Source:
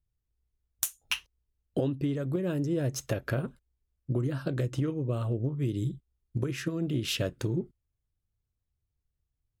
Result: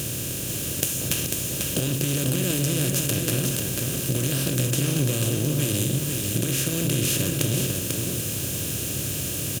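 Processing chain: spectral levelling over time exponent 0.2; high-pass 55 Hz; tone controls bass +8 dB, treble +11 dB; compression, threshold -18 dBFS, peak gain reduction 8 dB; on a send: delay 494 ms -4.5 dB; on the sum: trim -3 dB

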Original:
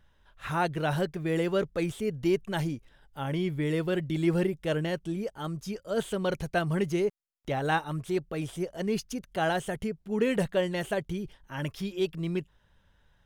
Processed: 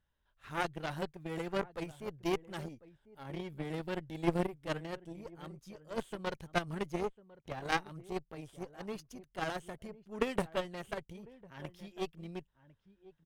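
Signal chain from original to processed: echo from a far wall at 180 m, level -13 dB; Chebyshev shaper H 2 -12 dB, 3 -11 dB, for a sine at -13.5 dBFS

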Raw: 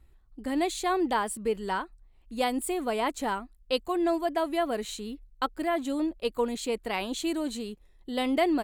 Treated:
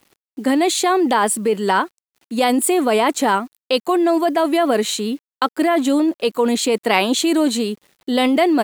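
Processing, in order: high-pass 180 Hz 24 dB/octave; in parallel at -0.5 dB: compressor with a negative ratio -30 dBFS, ratio -0.5; on the sum: bit crusher 10-bit; trim +8 dB

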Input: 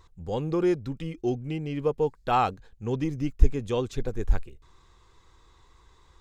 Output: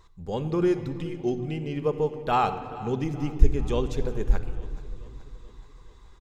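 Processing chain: feedback delay 428 ms, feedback 58%, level -19 dB; on a send at -8 dB: reverberation RT60 2.0 s, pre-delay 5 ms

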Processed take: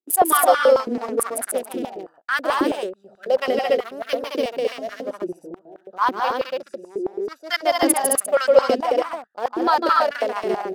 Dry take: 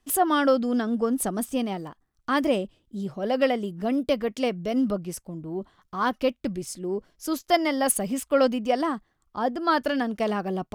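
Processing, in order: local Wiener filter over 41 samples; 6.05–8.40 s: treble shelf 8.3 kHz -5 dB; loudspeakers at several distances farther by 52 m -4 dB, 74 m -4 dB, 98 m -3 dB; gate with hold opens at -34 dBFS; treble shelf 4 kHz +12 dB; step-sequenced high-pass 9.2 Hz 350–1500 Hz; trim -2 dB

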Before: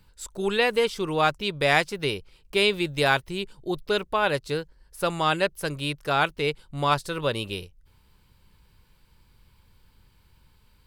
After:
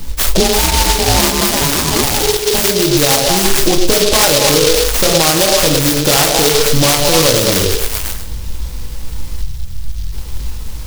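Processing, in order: bass shelf 120 Hz +9 dB; repeats whose band climbs or falls 108 ms, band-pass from 450 Hz, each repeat 0.7 oct, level -6 dB; compression 16:1, threshold -32 dBFS, peak gain reduction 18 dB; bass shelf 260 Hz -6.5 dB; reverberation RT60 0.35 s, pre-delay 4 ms, DRR 2.5 dB; 0.40–2.64 s: ring modulator 420 Hz; 9.42–10.13 s: time-frequency box 210–4400 Hz -13 dB; loudness maximiser +30 dB; delay time shaken by noise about 4.3 kHz, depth 0.2 ms; trim -1 dB

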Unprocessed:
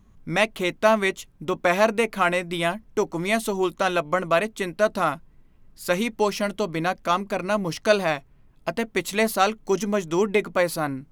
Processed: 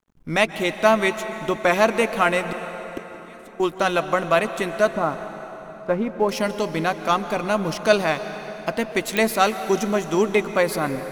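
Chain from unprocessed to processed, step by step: 4.90–6.29 s: low-pass 1.1 kHz 12 dB/octave; crossover distortion -50 dBFS; 2.47–3.60 s: inverted gate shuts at -20 dBFS, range -28 dB; plate-style reverb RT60 4.1 s, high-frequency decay 0.75×, pre-delay 115 ms, DRR 10 dB; clicks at 9.17 s, -9 dBFS; trim +2 dB

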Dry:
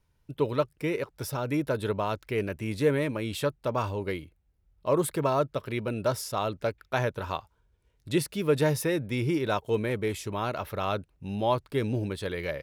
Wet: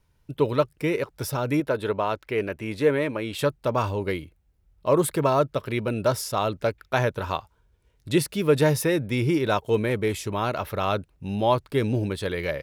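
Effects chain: 1.60–3.39 s: tone controls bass -7 dB, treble -7 dB; trim +4.5 dB

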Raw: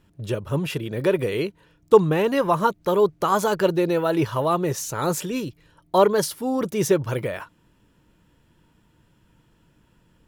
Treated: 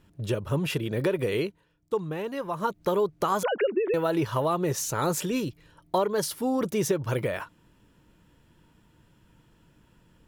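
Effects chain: 1.36–2.84 s: dip -11.5 dB, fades 0.28 s; 3.43–3.94 s: formants replaced by sine waves; compression 5:1, threshold -22 dBFS, peak gain reduction 10.5 dB

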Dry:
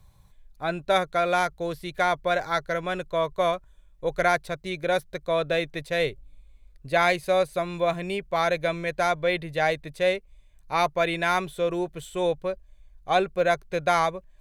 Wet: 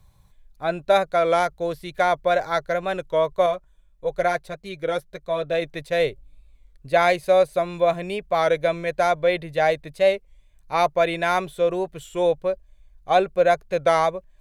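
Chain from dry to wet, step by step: dynamic bell 590 Hz, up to +6 dB, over -35 dBFS, Q 1.4; 3.46–5.62 s: flange 1.7 Hz, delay 4.2 ms, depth 2.2 ms, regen -33%; warped record 33 1/3 rpm, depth 100 cents

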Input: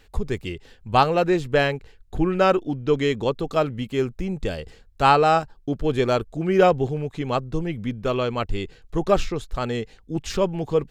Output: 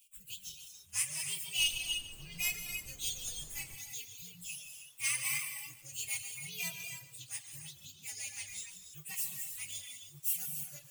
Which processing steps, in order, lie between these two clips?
frequency axis rescaled in octaves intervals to 128%; differentiator; gated-style reverb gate 360 ms flat, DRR 0.5 dB; reverb removal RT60 0.76 s; FFT filter 160 Hz 0 dB, 240 Hz -22 dB, 470 Hz -29 dB, 1.7 kHz -24 dB, 2.6 kHz +1 dB, 4.9 kHz -15 dB, 7.9 kHz -2 dB; 1.58–3.74 s: added noise brown -60 dBFS; bit-crushed delay 145 ms, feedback 55%, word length 10-bit, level -13.5 dB; trim +7.5 dB

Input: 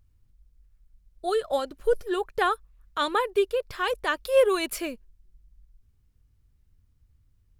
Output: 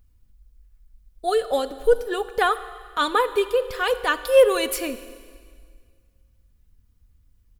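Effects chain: treble shelf 12 kHz +6.5 dB; comb 4.1 ms, depth 42%; Schroeder reverb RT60 1.9 s, combs from 33 ms, DRR 13 dB; trim +3 dB

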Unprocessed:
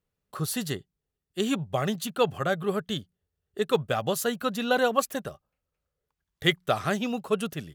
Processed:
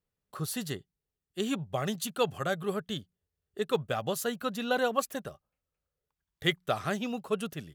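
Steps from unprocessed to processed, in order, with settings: 1.86–2.74 s: peaking EQ 9 kHz +5.5 dB 2.1 oct; trim -4.5 dB

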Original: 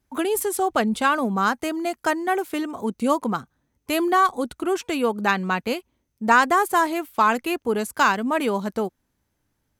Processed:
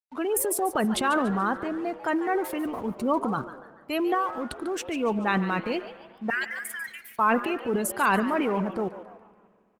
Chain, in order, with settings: spectral gate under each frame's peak -25 dB strong; 1.41–1.98 s: treble shelf 2.3 kHz -9.5 dB; 4.14–4.83 s: compression 12:1, threshold -22 dBFS, peak gain reduction 9 dB; 6.30–7.19 s: elliptic high-pass 1.7 kHz, stop band 60 dB; transient shaper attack -3 dB, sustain +9 dB; crossover distortion -49 dBFS; frequency-shifting echo 144 ms, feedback 42%, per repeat +150 Hz, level -13.5 dB; spring tank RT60 2.3 s, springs 41/58 ms, chirp 45 ms, DRR 17.5 dB; trim -3 dB; Opus 24 kbps 48 kHz

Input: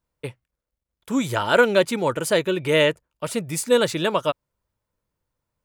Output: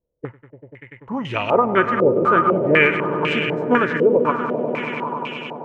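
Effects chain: formant shift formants -3 st; echo with a slow build-up 97 ms, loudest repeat 5, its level -12 dB; step-sequenced low-pass 4 Hz 490–2700 Hz; trim -1.5 dB

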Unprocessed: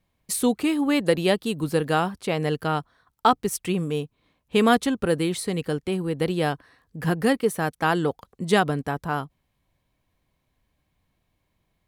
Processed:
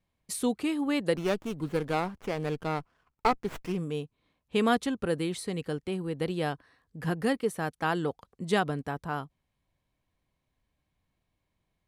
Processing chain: Bessel low-pass 11 kHz, order 8; 1.16–3.78 s: sliding maximum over 9 samples; trim -6.5 dB

